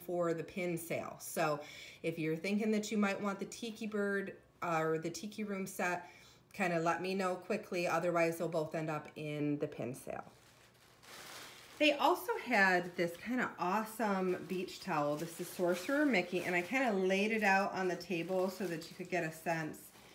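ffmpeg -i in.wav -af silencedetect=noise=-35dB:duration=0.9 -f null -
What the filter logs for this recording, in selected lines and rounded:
silence_start: 10.20
silence_end: 11.81 | silence_duration: 1.61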